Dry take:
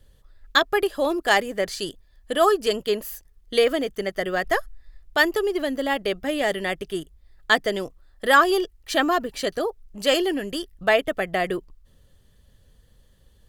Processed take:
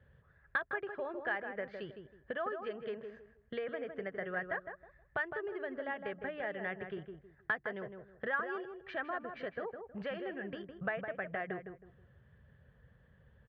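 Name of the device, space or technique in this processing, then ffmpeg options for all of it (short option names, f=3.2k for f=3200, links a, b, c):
bass amplifier: -filter_complex "[0:a]acompressor=threshold=-34dB:ratio=5,highpass=f=63:w=0.5412,highpass=f=63:w=1.3066,equalizer=f=140:t=q:w=4:g=7,equalizer=f=300:t=q:w=4:g=-10,equalizer=f=1.6k:t=q:w=4:g=8,lowpass=f=2.3k:w=0.5412,lowpass=f=2.3k:w=1.3066,asplit=2[a][b];[b]adelay=159,lowpass=f=1.4k:p=1,volume=-6dB,asplit=2[c][d];[d]adelay=159,lowpass=f=1.4k:p=1,volume=0.28,asplit=2[e][f];[f]adelay=159,lowpass=f=1.4k:p=1,volume=0.28,asplit=2[g][h];[h]adelay=159,lowpass=f=1.4k:p=1,volume=0.28[i];[a][c][e][g][i]amix=inputs=5:normalize=0,volume=-3.5dB"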